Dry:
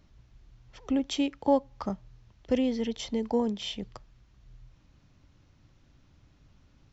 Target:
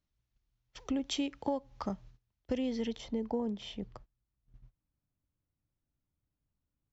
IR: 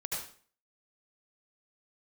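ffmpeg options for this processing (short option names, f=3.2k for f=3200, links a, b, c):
-af "asetnsamples=n=441:p=0,asendcmd='0.9 highshelf g 2;2.98 highshelf g -10.5',highshelf=f=2.1k:g=7.5,agate=range=-23dB:threshold=-49dB:ratio=16:detection=peak,acompressor=threshold=-27dB:ratio=5,volume=-2.5dB"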